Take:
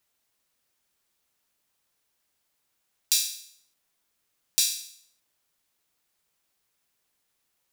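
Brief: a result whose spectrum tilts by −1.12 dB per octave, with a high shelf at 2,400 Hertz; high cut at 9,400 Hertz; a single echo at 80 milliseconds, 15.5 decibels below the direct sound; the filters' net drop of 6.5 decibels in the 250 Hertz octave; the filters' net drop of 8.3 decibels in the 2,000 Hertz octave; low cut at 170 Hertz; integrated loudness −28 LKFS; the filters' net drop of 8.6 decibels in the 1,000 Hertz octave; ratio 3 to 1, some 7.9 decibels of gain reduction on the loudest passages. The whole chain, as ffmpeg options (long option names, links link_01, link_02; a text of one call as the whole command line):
ffmpeg -i in.wav -af "highpass=170,lowpass=9400,equalizer=frequency=250:width_type=o:gain=-7,equalizer=frequency=1000:width_type=o:gain=-7.5,equalizer=frequency=2000:width_type=o:gain=-8,highshelf=frequency=2400:gain=-4,acompressor=threshold=-35dB:ratio=3,aecho=1:1:80:0.168,volume=10.5dB" out.wav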